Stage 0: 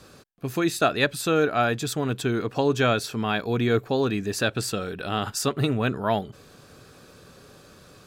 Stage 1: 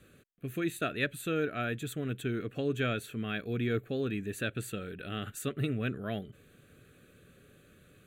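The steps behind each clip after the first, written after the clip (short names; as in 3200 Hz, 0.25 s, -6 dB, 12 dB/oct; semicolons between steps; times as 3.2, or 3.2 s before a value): fixed phaser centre 2200 Hz, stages 4; gain -7 dB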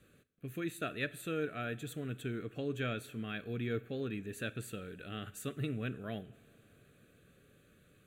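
two-slope reverb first 0.53 s, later 3.9 s, from -15 dB, DRR 15 dB; gain -5.5 dB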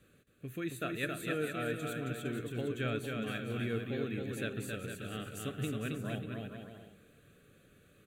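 bouncing-ball echo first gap 0.27 s, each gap 0.7×, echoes 5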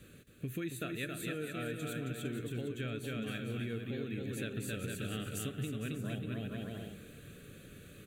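vocal rider within 4 dB 0.5 s; bell 910 Hz -7.5 dB 1.7 oct; compressor 4:1, threshold -44 dBFS, peak gain reduction 10.5 dB; gain +7.5 dB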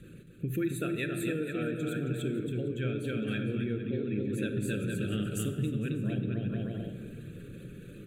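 formant sharpening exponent 1.5; shoebox room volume 1900 m³, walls mixed, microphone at 0.85 m; gain +5.5 dB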